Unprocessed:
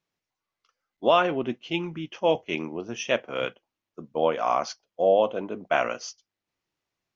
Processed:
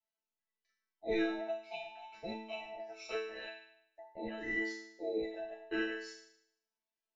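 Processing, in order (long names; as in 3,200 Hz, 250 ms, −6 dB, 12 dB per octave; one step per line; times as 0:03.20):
frequency inversion band by band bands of 1,000 Hz
resonators tuned to a chord A3 fifth, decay 0.73 s
level +7 dB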